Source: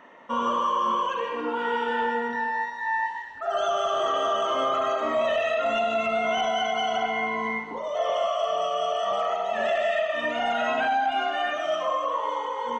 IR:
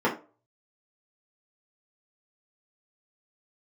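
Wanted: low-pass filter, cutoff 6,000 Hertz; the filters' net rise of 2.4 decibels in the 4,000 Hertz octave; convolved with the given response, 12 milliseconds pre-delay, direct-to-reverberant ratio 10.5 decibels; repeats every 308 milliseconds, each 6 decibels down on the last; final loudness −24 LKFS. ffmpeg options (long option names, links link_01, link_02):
-filter_complex "[0:a]lowpass=6000,equalizer=frequency=4000:width_type=o:gain=4,aecho=1:1:308|616|924|1232|1540|1848:0.501|0.251|0.125|0.0626|0.0313|0.0157,asplit=2[link_01][link_02];[1:a]atrim=start_sample=2205,adelay=12[link_03];[link_02][link_03]afir=irnorm=-1:irlink=0,volume=-25dB[link_04];[link_01][link_04]amix=inputs=2:normalize=0"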